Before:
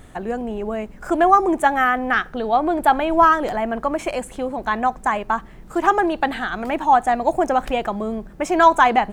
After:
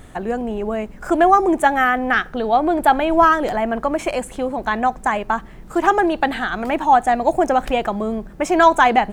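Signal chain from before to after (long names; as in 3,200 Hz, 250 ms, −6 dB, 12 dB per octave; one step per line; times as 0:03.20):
dynamic equaliser 1,100 Hz, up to −4 dB, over −27 dBFS, Q 2.7
level +2.5 dB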